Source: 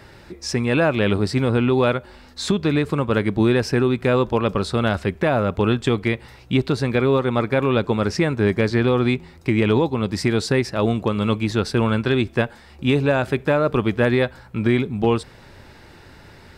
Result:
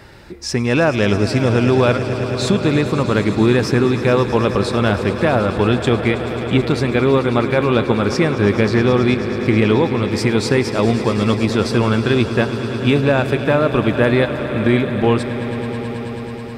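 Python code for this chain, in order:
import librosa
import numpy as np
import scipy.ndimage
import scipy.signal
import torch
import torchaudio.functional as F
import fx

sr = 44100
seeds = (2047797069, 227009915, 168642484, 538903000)

y = fx.echo_swell(x, sr, ms=108, loudest=5, wet_db=-15.0)
y = y * librosa.db_to_amplitude(3.0)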